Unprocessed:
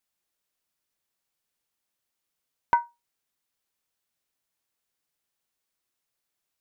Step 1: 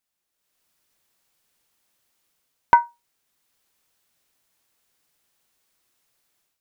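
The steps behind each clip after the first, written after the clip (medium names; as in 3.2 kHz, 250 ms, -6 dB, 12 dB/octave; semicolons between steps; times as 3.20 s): level rider gain up to 11.5 dB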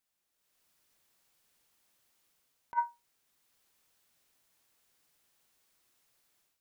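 compressor with a negative ratio -21 dBFS, ratio -0.5; trim -8.5 dB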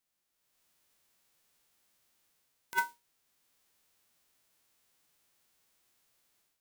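formants flattened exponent 0.1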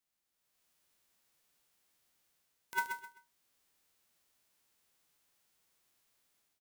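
feedback delay 129 ms, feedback 27%, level -7 dB; trim -3.5 dB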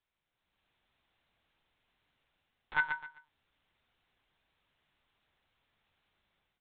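monotone LPC vocoder at 8 kHz 150 Hz; trim +4.5 dB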